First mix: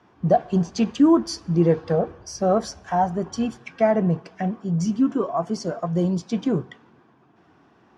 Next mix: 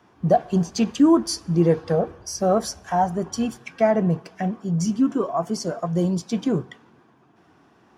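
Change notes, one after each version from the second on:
master: remove high-frequency loss of the air 75 metres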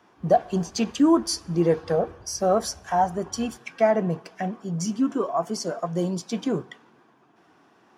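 speech: add high-pass filter 290 Hz 6 dB per octave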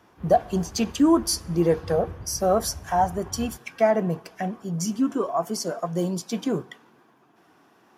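speech: add parametric band 13,000 Hz +14.5 dB 0.58 octaves
background +11.0 dB

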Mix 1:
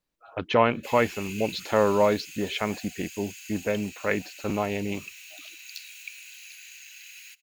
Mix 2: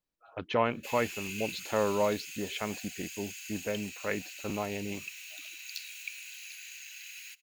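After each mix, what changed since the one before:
speech −7.0 dB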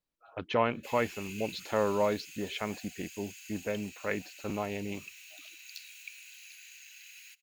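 background −5.5 dB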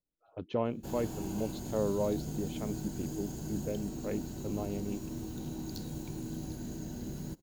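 background: remove four-pole ladder high-pass 2,400 Hz, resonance 80%
master: add drawn EQ curve 340 Hz 0 dB, 570 Hz −4 dB, 2,000 Hz −19 dB, 3,200 Hz −11 dB

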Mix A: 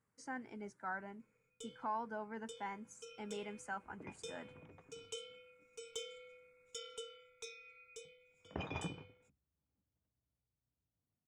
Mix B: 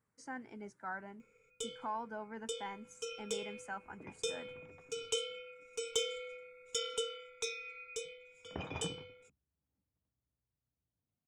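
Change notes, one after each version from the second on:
first sound +11.0 dB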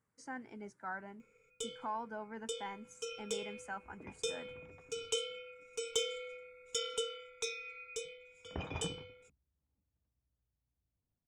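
second sound: remove high-pass filter 94 Hz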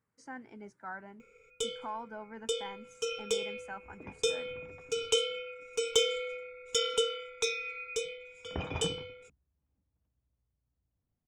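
first sound +8.5 dB
second sound +4.5 dB
master: add parametric band 8,900 Hz −4.5 dB 1.2 octaves

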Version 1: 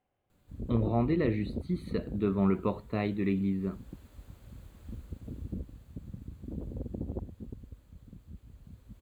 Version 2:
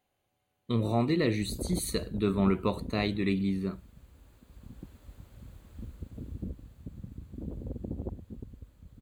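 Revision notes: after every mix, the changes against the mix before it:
speech: remove high-frequency loss of the air 460 metres
background: entry +0.90 s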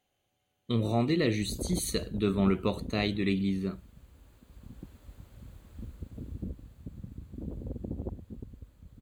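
speech: add thirty-one-band graphic EQ 1,000 Hz −5 dB, 3,150 Hz +6 dB, 6,300 Hz +6 dB

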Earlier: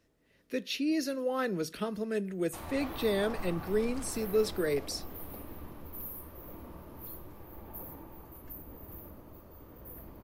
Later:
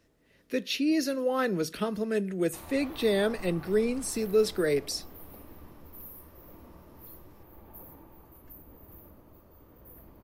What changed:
speech +4.0 dB
background −4.0 dB

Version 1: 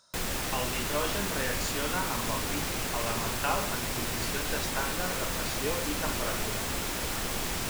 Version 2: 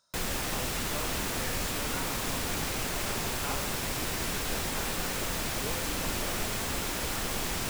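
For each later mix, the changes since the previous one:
speech −9.0 dB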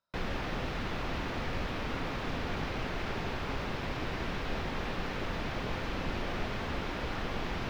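speech −9.0 dB
master: add high-frequency loss of the air 280 metres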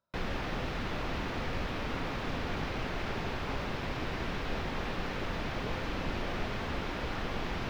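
speech: add tilt shelving filter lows +6.5 dB, about 1,300 Hz

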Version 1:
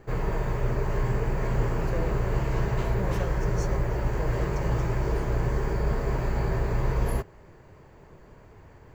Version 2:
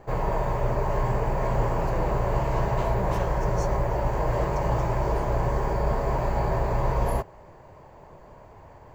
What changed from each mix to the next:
background: add flat-topped bell 760 Hz +8.5 dB 1.2 octaves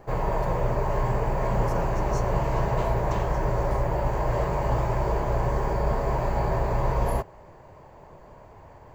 speech: entry −1.45 s

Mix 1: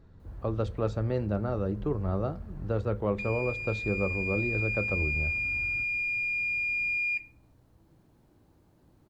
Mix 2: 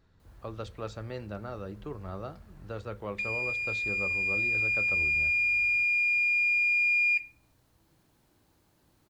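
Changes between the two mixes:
speech −4.0 dB
master: add tilt shelving filter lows −7 dB, about 1,100 Hz

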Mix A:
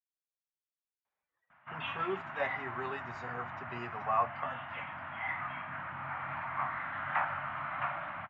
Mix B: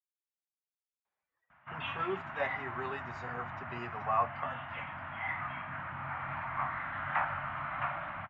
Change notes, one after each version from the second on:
background: add low-shelf EQ 84 Hz +12 dB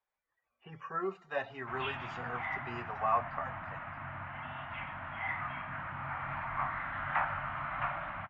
speech: entry −1.05 s
master: remove high-pass filter 62 Hz

